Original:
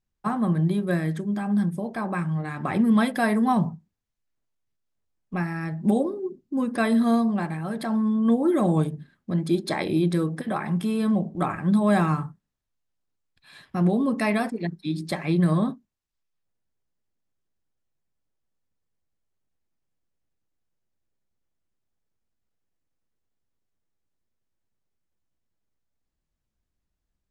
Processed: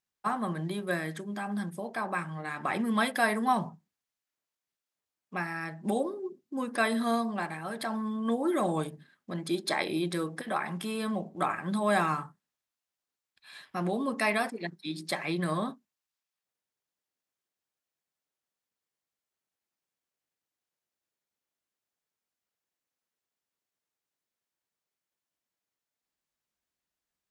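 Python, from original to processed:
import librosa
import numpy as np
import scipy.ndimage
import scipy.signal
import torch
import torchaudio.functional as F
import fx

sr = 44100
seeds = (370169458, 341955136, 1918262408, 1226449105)

y = fx.highpass(x, sr, hz=810.0, slope=6)
y = y * librosa.db_to_amplitude(1.0)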